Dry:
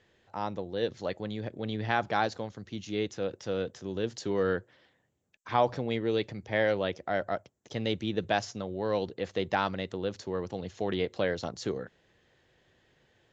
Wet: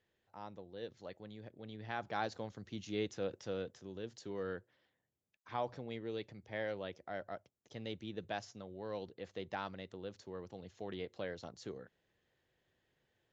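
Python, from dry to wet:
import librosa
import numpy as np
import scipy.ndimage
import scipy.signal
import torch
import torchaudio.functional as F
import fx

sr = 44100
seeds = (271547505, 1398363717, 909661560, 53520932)

y = fx.gain(x, sr, db=fx.line((1.79, -15.0), (2.49, -6.0), (3.33, -6.0), (4.0, -13.0)))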